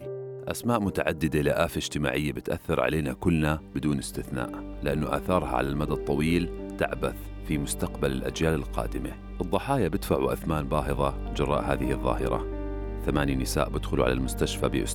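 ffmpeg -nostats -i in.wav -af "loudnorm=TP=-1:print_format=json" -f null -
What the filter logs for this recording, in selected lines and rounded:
"input_i" : "-28.2",
"input_tp" : "-8.4",
"input_lra" : "1.2",
"input_thresh" : "-38.2",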